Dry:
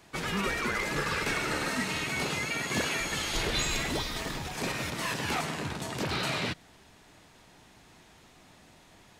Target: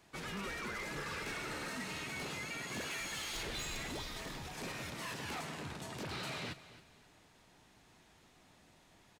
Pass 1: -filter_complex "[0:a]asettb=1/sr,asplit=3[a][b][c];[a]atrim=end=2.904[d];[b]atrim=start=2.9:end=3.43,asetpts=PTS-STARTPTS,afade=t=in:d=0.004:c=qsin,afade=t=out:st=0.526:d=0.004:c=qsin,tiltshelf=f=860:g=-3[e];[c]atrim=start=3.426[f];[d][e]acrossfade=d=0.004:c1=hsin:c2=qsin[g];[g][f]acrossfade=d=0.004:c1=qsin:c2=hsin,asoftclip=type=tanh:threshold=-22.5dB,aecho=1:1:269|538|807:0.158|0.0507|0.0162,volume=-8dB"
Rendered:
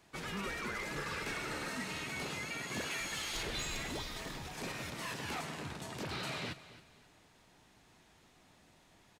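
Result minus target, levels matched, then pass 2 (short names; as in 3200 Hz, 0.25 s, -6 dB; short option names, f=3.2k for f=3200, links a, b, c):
soft clip: distortion -8 dB
-filter_complex "[0:a]asettb=1/sr,asplit=3[a][b][c];[a]atrim=end=2.904[d];[b]atrim=start=2.9:end=3.43,asetpts=PTS-STARTPTS,afade=t=in:d=0.004:c=qsin,afade=t=out:st=0.526:d=0.004:c=qsin,tiltshelf=f=860:g=-3[e];[c]atrim=start=3.426[f];[d][e]acrossfade=d=0.004:c1=hsin:c2=qsin[g];[g][f]acrossfade=d=0.004:c1=qsin:c2=hsin,asoftclip=type=tanh:threshold=-28.5dB,aecho=1:1:269|538|807:0.158|0.0507|0.0162,volume=-8dB"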